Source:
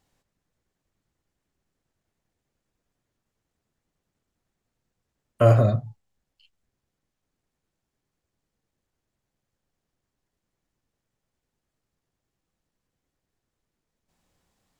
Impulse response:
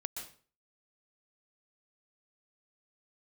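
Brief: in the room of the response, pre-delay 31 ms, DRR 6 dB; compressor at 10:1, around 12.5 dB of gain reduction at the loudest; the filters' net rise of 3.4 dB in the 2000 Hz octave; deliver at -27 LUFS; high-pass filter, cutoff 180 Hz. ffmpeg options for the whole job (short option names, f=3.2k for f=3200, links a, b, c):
-filter_complex "[0:a]highpass=180,equalizer=f=2k:t=o:g=5,acompressor=threshold=-26dB:ratio=10,asplit=2[a][b];[1:a]atrim=start_sample=2205,adelay=31[c];[b][c]afir=irnorm=-1:irlink=0,volume=-5.5dB[d];[a][d]amix=inputs=2:normalize=0,volume=6dB"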